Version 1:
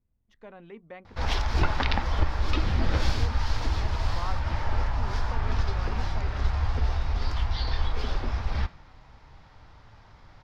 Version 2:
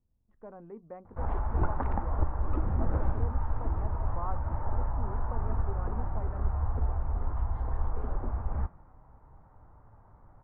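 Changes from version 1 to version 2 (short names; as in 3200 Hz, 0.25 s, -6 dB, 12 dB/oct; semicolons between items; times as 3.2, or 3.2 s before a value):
background -3.5 dB; master: add LPF 1200 Hz 24 dB/oct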